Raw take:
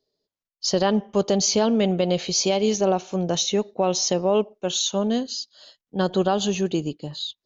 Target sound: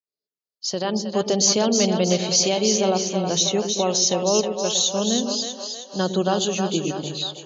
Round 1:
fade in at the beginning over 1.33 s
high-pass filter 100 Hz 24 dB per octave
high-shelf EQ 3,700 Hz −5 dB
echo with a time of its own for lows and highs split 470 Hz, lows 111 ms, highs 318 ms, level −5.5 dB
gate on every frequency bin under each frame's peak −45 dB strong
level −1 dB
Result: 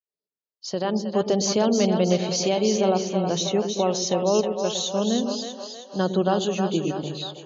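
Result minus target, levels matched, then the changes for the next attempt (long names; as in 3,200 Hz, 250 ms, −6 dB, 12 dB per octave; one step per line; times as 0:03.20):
8,000 Hz band −6.5 dB
change: high-shelf EQ 3,700 Hz +7 dB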